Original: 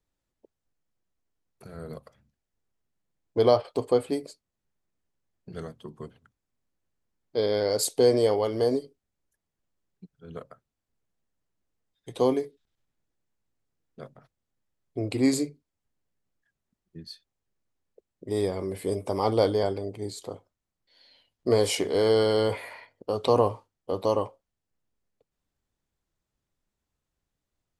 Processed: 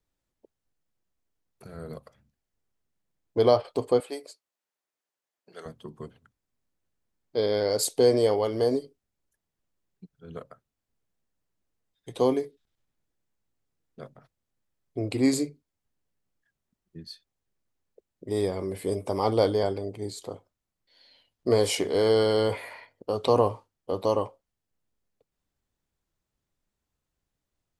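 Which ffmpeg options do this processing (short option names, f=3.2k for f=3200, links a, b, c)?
-filter_complex "[0:a]asettb=1/sr,asplit=3[a][b][c];[a]atrim=end=4.004[d];[b]atrim=start=4:end=5.66,asetpts=PTS-STARTPTS,afade=t=in:d=0.004:c=qsin,afade=t=out:st=1.656:d=0.004:c=qsin,highpass=550[e];[c]atrim=start=5.656[f];[d][e]acrossfade=d=0.004:c1=hsin:c2=qsin[g];[g][f]acrossfade=d=0.004:c1=qsin:c2=hsin"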